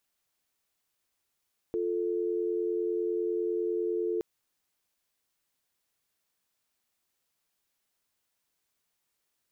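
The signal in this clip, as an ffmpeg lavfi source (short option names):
-f lavfi -i "aevalsrc='0.0316*(sin(2*PI*350*t)+sin(2*PI*440*t))':d=2.47:s=44100"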